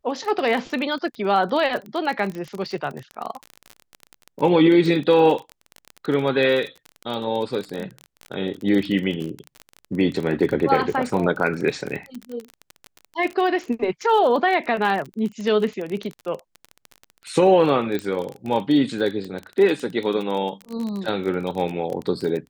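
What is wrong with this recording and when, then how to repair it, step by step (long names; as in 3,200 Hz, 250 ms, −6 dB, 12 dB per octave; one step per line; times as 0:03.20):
surface crackle 28 per second −26 dBFS
0:17.99: click −14 dBFS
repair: click removal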